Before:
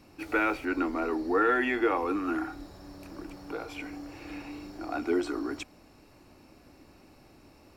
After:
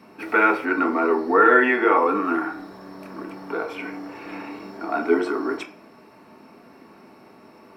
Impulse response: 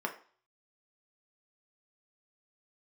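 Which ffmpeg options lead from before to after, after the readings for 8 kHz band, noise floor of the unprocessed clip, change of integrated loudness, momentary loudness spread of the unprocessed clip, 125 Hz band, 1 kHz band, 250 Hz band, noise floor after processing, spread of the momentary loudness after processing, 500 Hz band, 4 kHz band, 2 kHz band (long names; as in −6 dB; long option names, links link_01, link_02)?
can't be measured, −57 dBFS, +9.5 dB, 18 LU, +2.5 dB, +11.0 dB, +6.0 dB, −50 dBFS, 20 LU, +9.0 dB, +3.0 dB, +10.0 dB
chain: -filter_complex "[0:a]highpass=frequency=130:poles=1[link_01];[1:a]atrim=start_sample=2205[link_02];[link_01][link_02]afir=irnorm=-1:irlink=0,volume=4.5dB"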